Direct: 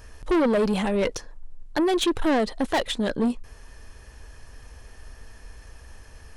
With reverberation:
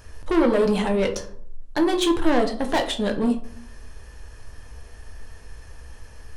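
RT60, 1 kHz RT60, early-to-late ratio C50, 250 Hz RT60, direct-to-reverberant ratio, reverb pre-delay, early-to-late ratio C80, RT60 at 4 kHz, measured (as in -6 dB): 0.60 s, 0.50 s, 11.5 dB, 0.80 s, 4.0 dB, 6 ms, 15.0 dB, 0.30 s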